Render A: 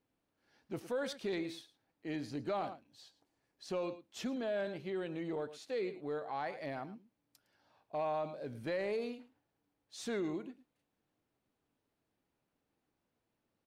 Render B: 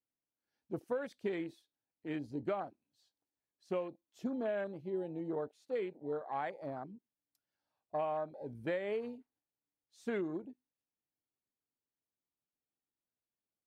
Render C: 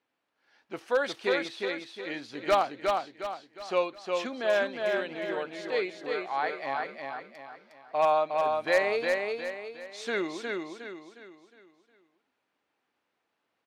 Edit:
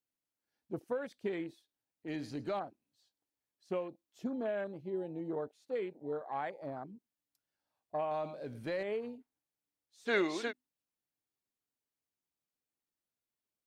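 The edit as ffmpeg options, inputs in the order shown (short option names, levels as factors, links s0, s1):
-filter_complex "[0:a]asplit=2[s0][s1];[1:a]asplit=4[s2][s3][s4][s5];[s2]atrim=end=2.082[s6];[s0]atrim=start=2.078:end=2.592[s7];[s3]atrim=start=2.588:end=8.112[s8];[s1]atrim=start=8.108:end=8.832[s9];[s4]atrim=start=8.828:end=10.11[s10];[2:a]atrim=start=10.05:end=10.53[s11];[s5]atrim=start=10.47[s12];[s6][s7]acrossfade=d=0.004:c1=hsin:c2=hsin[s13];[s13][s8]acrossfade=d=0.004:c1=hsin:c2=hsin[s14];[s14][s9]acrossfade=d=0.004:c1=hsin:c2=hsin[s15];[s15][s10]acrossfade=d=0.004:c1=hsin:c2=hsin[s16];[s16][s11]acrossfade=d=0.06:c1=tri:c2=tri[s17];[s17][s12]acrossfade=d=0.06:c1=tri:c2=tri"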